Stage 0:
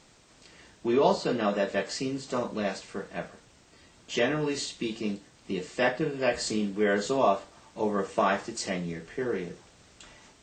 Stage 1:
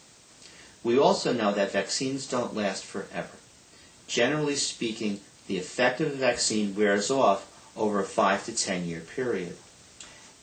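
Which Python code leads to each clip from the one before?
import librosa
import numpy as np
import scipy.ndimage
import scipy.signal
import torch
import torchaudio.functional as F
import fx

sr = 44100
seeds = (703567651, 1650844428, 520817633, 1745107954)

y = scipy.signal.sosfilt(scipy.signal.butter(2, 61.0, 'highpass', fs=sr, output='sos'), x)
y = fx.high_shelf(y, sr, hz=5800.0, db=11.0)
y = y * 10.0 ** (1.5 / 20.0)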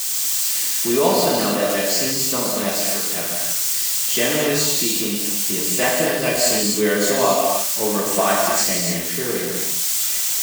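y = x + 0.5 * 10.0 ** (-20.0 / 20.0) * np.diff(np.sign(x), prepend=np.sign(x[:1]))
y = fx.rev_gated(y, sr, seeds[0], gate_ms=330, shape='flat', drr_db=-1.5)
y = y * 10.0 ** (2.0 / 20.0)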